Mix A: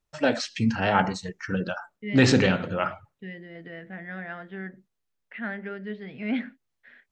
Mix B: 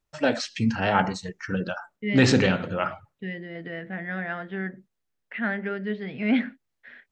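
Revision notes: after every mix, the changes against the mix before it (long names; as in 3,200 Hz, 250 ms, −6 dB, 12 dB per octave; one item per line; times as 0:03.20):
second voice +5.5 dB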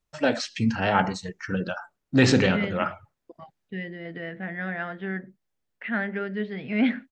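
second voice: entry +0.50 s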